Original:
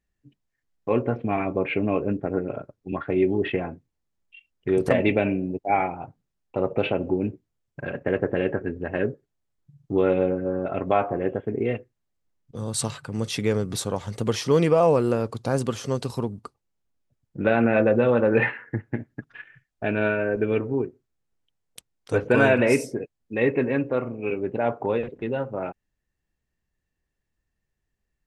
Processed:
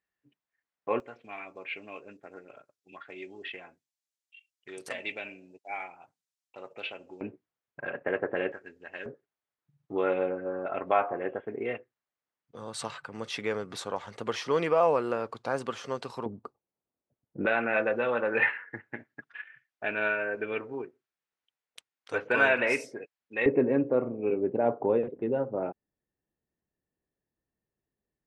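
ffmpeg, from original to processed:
-af "asetnsamples=n=441:p=0,asendcmd='1 bandpass f 6800;7.21 bandpass f 1300;8.52 bandpass f 5700;9.06 bandpass f 1400;16.26 bandpass f 520;17.46 bandpass f 1900;23.46 bandpass f 400',bandpass=f=1.4k:t=q:w=0.71:csg=0"

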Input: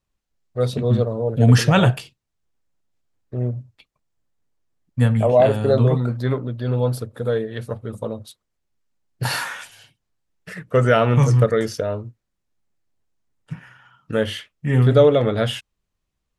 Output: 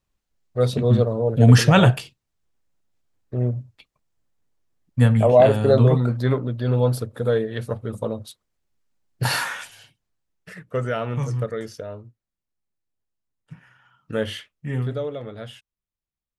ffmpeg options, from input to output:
-af "volume=8dB,afade=t=out:st=9.53:d=1.37:silence=0.281838,afade=t=in:st=13.53:d=0.82:silence=0.446684,afade=t=out:st=14.35:d=0.65:silence=0.237137"

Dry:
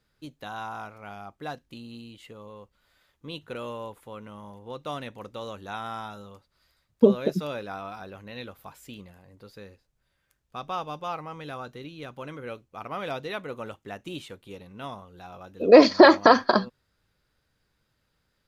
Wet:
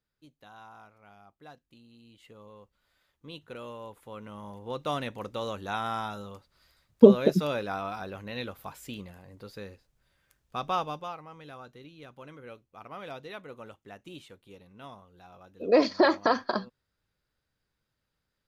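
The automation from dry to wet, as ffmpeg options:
-af "volume=3dB,afade=t=in:st=1.97:d=0.4:silence=0.398107,afade=t=in:st=3.81:d=0.97:silence=0.354813,afade=t=out:st=10.75:d=0.4:silence=0.266073"

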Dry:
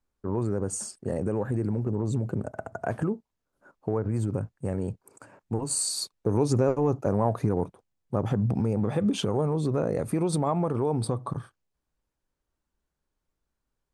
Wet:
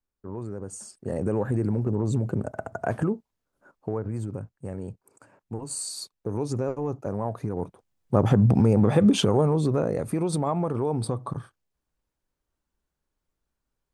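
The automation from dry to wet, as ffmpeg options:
-af "volume=14.5dB,afade=t=in:st=0.84:d=0.47:silence=0.334965,afade=t=out:st=3.04:d=1.31:silence=0.421697,afade=t=in:st=7.53:d=0.69:silence=0.251189,afade=t=out:st=9.04:d=0.96:silence=0.446684"

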